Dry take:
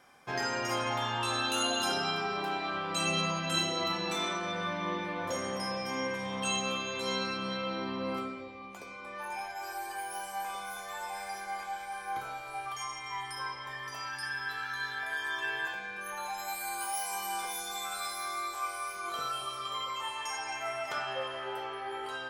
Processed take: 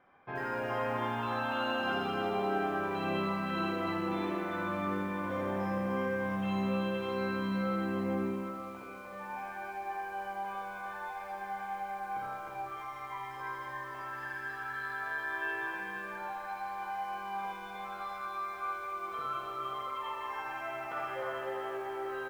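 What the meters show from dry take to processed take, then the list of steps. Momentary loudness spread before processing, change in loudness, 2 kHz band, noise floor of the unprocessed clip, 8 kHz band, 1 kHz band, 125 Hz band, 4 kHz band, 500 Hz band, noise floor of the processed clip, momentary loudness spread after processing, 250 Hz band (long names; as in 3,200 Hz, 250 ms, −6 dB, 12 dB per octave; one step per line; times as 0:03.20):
9 LU, −1.5 dB, −2.0 dB, −44 dBFS, below −20 dB, −0.5 dB, +2.5 dB, −12.5 dB, +1.5 dB, −44 dBFS, 8 LU, +4.5 dB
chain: Bessel low-pass filter 1,800 Hz, order 4
on a send: multi-tap delay 51/61/119/306/516/667 ms −10/−6/−13.5/−4.5/−12/−13 dB
on the sum: feedback echo at a low word length 82 ms, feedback 55%, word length 9 bits, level −6 dB
level −3.5 dB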